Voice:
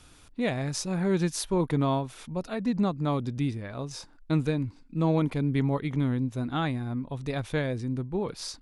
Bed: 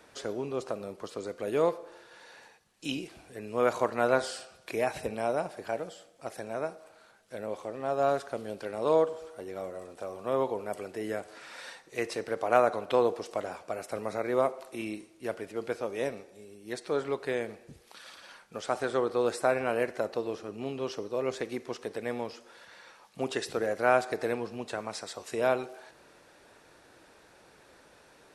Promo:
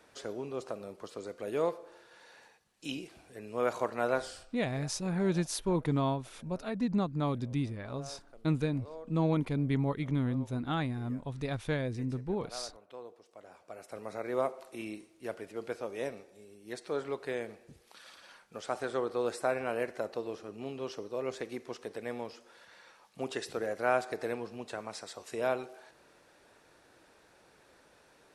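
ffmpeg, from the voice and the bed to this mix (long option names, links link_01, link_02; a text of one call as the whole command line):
ffmpeg -i stem1.wav -i stem2.wav -filter_complex "[0:a]adelay=4150,volume=-4dB[link_01];[1:a]volume=13dB,afade=type=out:start_time=4.1:duration=0.58:silence=0.133352,afade=type=in:start_time=13.33:duration=1.08:silence=0.133352[link_02];[link_01][link_02]amix=inputs=2:normalize=0" out.wav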